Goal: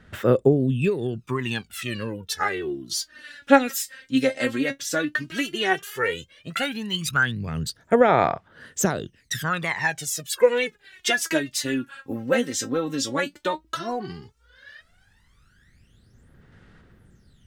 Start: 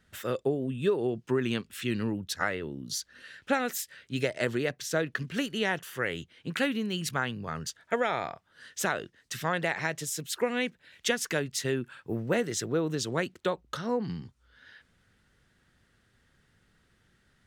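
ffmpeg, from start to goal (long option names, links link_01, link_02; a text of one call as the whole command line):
ffmpeg -i in.wav -af "aphaser=in_gain=1:out_gain=1:delay=3.8:decay=0.79:speed=0.12:type=sinusoidal,volume=2dB" out.wav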